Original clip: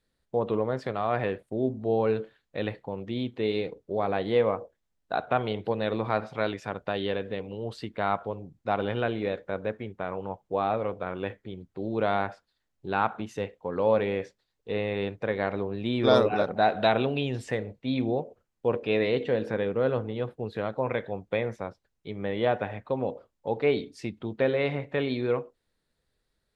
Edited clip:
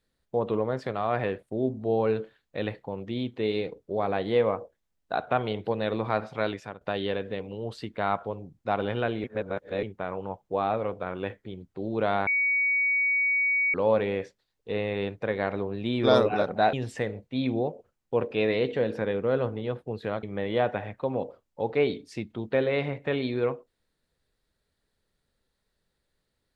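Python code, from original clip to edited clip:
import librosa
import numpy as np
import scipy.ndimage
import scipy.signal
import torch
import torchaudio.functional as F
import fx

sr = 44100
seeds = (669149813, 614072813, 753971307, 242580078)

y = fx.edit(x, sr, fx.fade_out_to(start_s=6.54, length_s=0.27, floor_db=-14.0),
    fx.reverse_span(start_s=9.24, length_s=0.59),
    fx.bleep(start_s=12.27, length_s=1.47, hz=2250.0, db=-21.5),
    fx.cut(start_s=16.73, length_s=0.52),
    fx.cut(start_s=20.75, length_s=1.35), tone=tone)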